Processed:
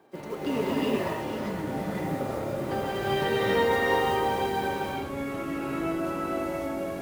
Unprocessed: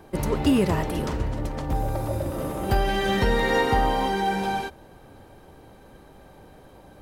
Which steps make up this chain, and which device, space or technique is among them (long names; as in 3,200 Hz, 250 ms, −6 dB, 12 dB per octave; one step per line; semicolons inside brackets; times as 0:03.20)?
early digital voice recorder (band-pass filter 230–4,000 Hz; one scale factor per block 5 bits)
reverb whose tail is shaped and stops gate 420 ms rising, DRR −6.5 dB
delay with pitch and tempo change per echo 790 ms, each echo −6 semitones, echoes 3, each echo −6 dB
level −9 dB